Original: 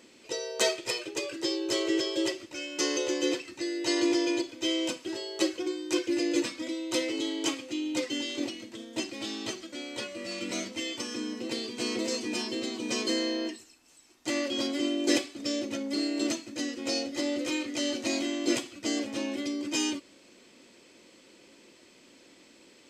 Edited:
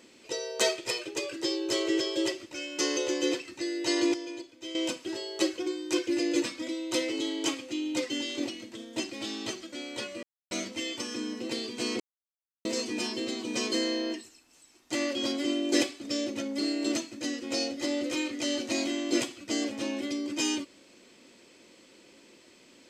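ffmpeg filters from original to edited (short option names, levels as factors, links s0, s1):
-filter_complex "[0:a]asplit=6[s0][s1][s2][s3][s4][s5];[s0]atrim=end=4.142[s6];[s1]atrim=start=4.138:end=4.752,asetpts=PTS-STARTPTS,volume=0.282[s7];[s2]atrim=start=4.748:end=10.23,asetpts=PTS-STARTPTS,afade=t=out:st=5.478:d=0.004:c=hsin[s8];[s3]atrim=start=10.23:end=10.51,asetpts=PTS-STARTPTS,volume=0[s9];[s4]atrim=start=10.51:end=12,asetpts=PTS-STARTPTS,afade=t=in:d=0.004:c=hsin,afade=t=out:st=1.486:d=0.004:c=hsin,apad=pad_dur=0.65[s10];[s5]atrim=start=12,asetpts=PTS-STARTPTS,afade=t=in:d=0.004:c=hsin[s11];[s6][s7]acrossfade=d=0.004:c1=hsin:c2=hsin[s12];[s8][s9][s10][s11]concat=n=4:v=0:a=1[s13];[s12][s13]acrossfade=d=0.004:c1=hsin:c2=hsin"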